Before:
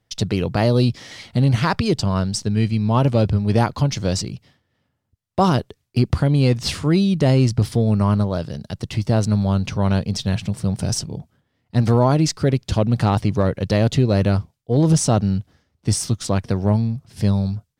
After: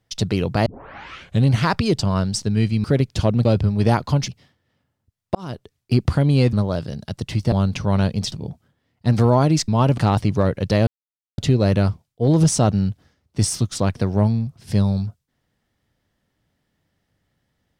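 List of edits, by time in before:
0.66 tape start 0.80 s
2.84–3.14 swap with 12.37–12.98
3.97–4.33 cut
5.4–5.98 fade in linear
6.58–8.15 cut
9.14–9.44 cut
10.24–11.01 cut
13.87 insert silence 0.51 s

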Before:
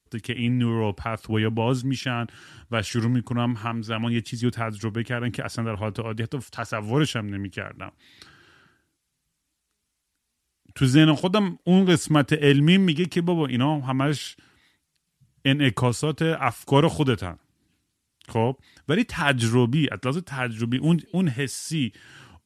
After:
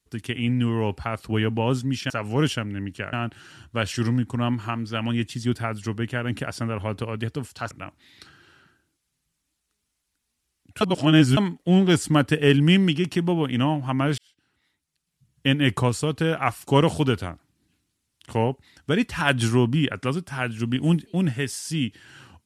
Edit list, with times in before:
6.68–7.71 move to 2.1
10.81–11.37 reverse
14.18–15.51 fade in

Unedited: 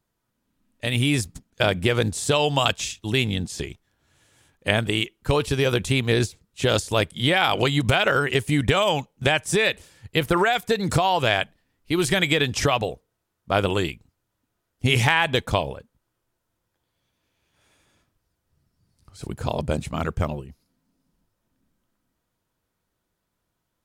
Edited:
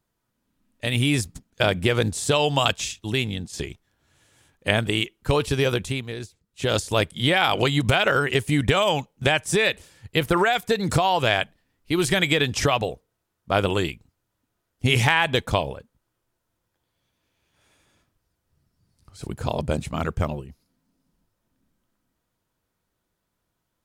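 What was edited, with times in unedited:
2.91–3.53 fade out, to -6.5 dB
5.63–6.84 dip -13 dB, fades 0.49 s

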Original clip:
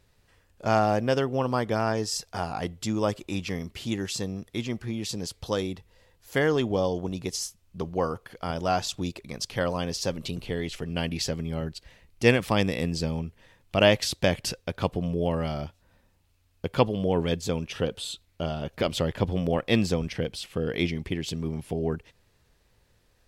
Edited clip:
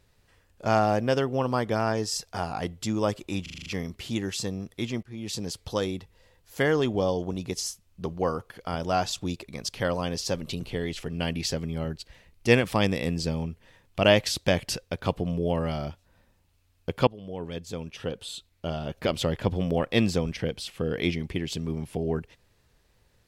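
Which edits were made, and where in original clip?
3.42 stutter 0.04 s, 7 plays
4.79–5.1 fade in, from -20.5 dB
16.83–18.76 fade in, from -16.5 dB

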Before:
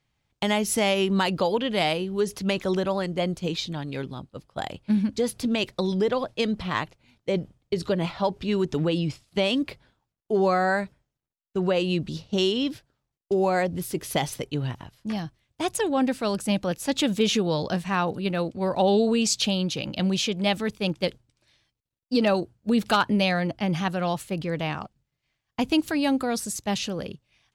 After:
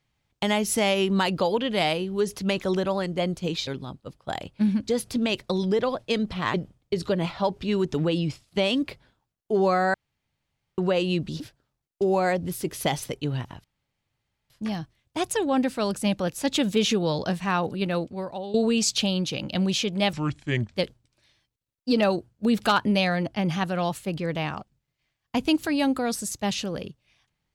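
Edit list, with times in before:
3.67–3.96 cut
6.83–7.34 cut
10.74–11.58 room tone
12.2–12.7 cut
14.94 insert room tone 0.86 s
18.45–18.98 fade out quadratic, to -15.5 dB
20.57–21.01 speed 69%

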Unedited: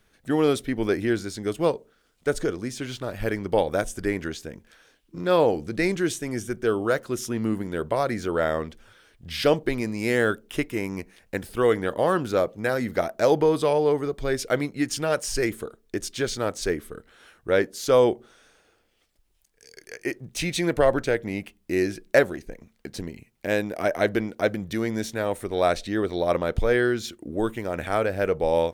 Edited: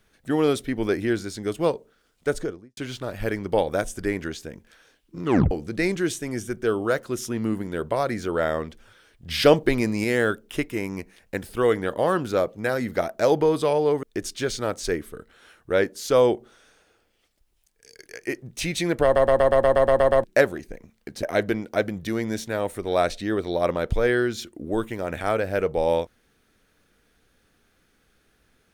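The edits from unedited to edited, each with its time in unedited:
2.28–2.77 studio fade out
5.23 tape stop 0.28 s
9.29–10.04 gain +4.5 dB
14.03–15.81 cut
20.82 stutter in place 0.12 s, 10 plays
23.01–23.89 cut

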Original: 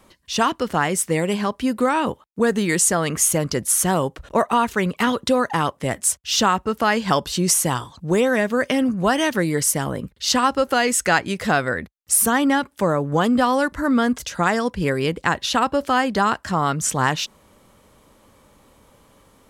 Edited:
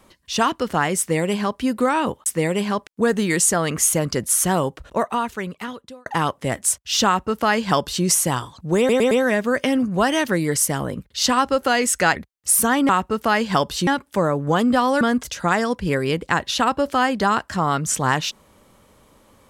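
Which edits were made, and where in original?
0.99–1.6 copy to 2.26
3.99–5.45 fade out
6.45–7.43 copy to 12.52
8.17 stutter 0.11 s, 4 plays
11.22–11.79 cut
13.66–13.96 cut

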